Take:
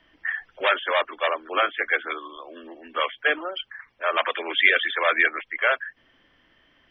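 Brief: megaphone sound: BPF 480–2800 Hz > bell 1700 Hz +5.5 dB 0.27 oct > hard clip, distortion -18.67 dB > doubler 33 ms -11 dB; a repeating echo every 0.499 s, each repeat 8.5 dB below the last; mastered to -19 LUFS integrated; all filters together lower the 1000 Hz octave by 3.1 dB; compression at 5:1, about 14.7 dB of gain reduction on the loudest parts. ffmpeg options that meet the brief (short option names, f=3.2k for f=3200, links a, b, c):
-filter_complex "[0:a]equalizer=f=1k:t=o:g=-4.5,acompressor=threshold=-30dB:ratio=5,highpass=480,lowpass=2.8k,equalizer=f=1.7k:t=o:w=0.27:g=5.5,aecho=1:1:499|998|1497|1996:0.376|0.143|0.0543|0.0206,asoftclip=type=hard:threshold=-23.5dB,asplit=2[a][b];[b]adelay=33,volume=-11dB[c];[a][c]amix=inputs=2:normalize=0,volume=14.5dB"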